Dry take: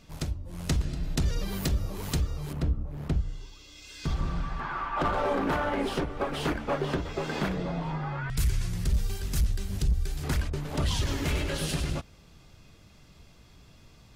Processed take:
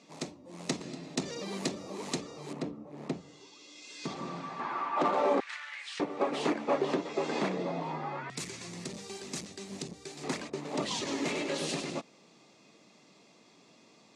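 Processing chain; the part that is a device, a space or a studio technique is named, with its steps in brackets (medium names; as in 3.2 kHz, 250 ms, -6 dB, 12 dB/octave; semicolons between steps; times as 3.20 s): television speaker (cabinet simulation 220–7900 Hz, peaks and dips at 1.5 kHz -10 dB, 3.1 kHz -6 dB, 5.1 kHz -3 dB); 5.40–6.00 s: Chebyshev band-pass 1.7–9.2 kHz, order 3; trim +1.5 dB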